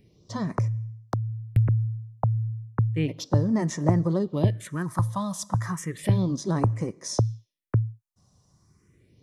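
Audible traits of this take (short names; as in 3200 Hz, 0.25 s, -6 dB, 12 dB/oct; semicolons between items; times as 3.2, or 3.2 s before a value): phasing stages 4, 0.33 Hz, lowest notch 360–3400 Hz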